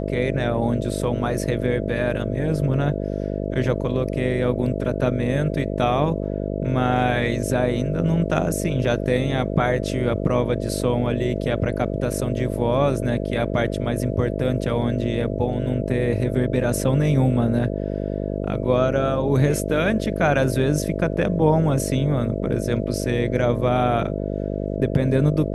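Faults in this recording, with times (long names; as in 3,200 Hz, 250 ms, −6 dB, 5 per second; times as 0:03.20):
mains buzz 50 Hz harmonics 13 −26 dBFS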